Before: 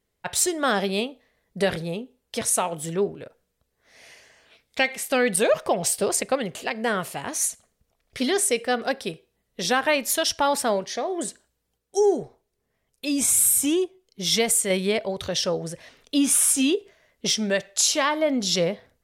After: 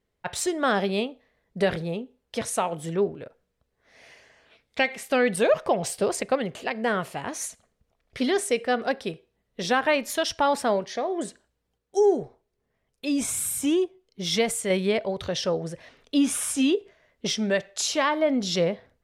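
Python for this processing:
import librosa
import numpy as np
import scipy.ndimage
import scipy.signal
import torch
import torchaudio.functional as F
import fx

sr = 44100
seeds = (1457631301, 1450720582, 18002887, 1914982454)

y = fx.lowpass(x, sr, hz=2900.0, slope=6)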